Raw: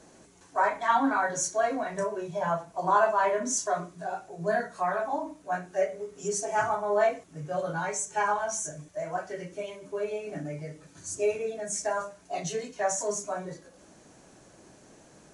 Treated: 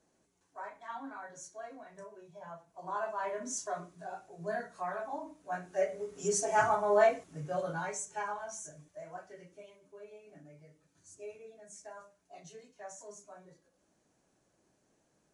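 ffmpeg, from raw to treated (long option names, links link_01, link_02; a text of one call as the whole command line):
ffmpeg -i in.wav -af "volume=-0.5dB,afade=type=in:start_time=2.63:duration=0.92:silence=0.316228,afade=type=in:start_time=5.37:duration=0.94:silence=0.375837,afade=type=out:start_time=7.01:duration=1.29:silence=0.281838,afade=type=out:start_time=8.81:duration=1.13:silence=0.421697" out.wav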